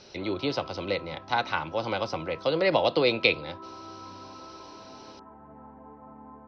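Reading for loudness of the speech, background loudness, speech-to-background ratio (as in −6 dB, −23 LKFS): −27.5 LKFS, −46.0 LKFS, 18.5 dB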